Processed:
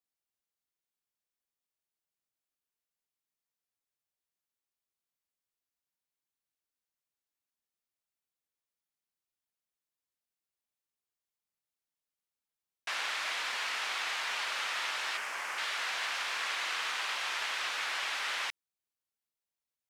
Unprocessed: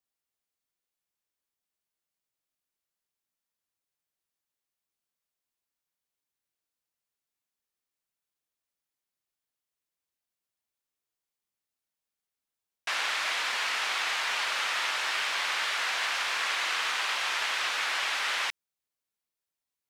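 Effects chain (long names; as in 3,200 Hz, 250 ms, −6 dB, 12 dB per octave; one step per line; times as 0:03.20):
0:15.17–0:15.58: parametric band 3,800 Hz −12.5 dB 0.78 octaves
level −5 dB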